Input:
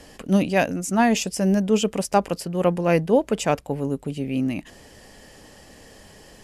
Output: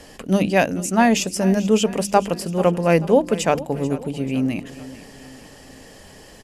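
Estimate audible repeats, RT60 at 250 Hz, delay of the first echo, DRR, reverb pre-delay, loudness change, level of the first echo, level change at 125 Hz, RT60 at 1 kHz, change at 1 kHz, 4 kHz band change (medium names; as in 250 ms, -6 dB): 3, no reverb, 438 ms, no reverb, no reverb, +2.5 dB, -16.5 dB, +2.0 dB, no reverb, +3.0 dB, +3.0 dB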